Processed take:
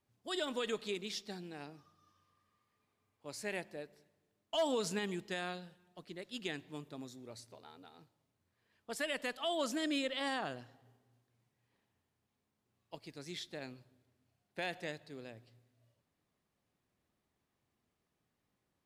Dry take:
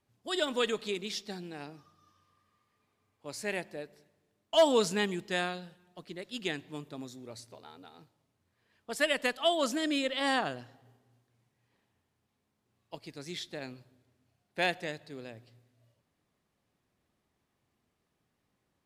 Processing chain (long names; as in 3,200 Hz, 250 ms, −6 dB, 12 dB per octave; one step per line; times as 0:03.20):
brickwall limiter −22 dBFS, peak gain reduction 6.5 dB
level −4.5 dB